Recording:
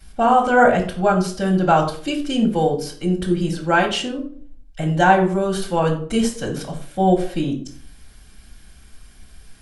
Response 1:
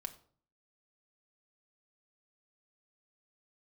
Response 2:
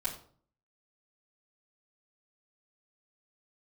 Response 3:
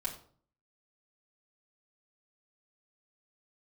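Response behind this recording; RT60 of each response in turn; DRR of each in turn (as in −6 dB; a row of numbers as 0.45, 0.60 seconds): 2; 0.50, 0.50, 0.50 seconds; 4.5, −10.0, −5.5 decibels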